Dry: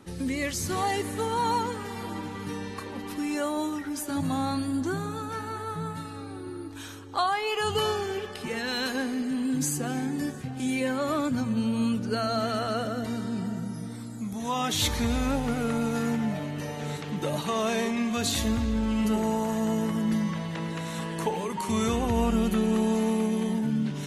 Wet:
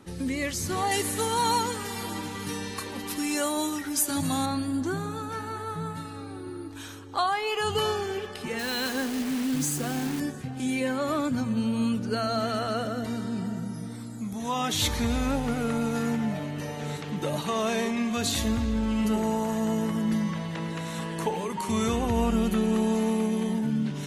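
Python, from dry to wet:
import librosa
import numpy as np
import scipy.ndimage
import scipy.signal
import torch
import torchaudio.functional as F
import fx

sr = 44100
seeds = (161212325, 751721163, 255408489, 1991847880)

y = fx.high_shelf(x, sr, hz=3100.0, db=12.0, at=(0.91, 4.46))
y = fx.quant_dither(y, sr, seeds[0], bits=6, dither='none', at=(8.59, 10.2))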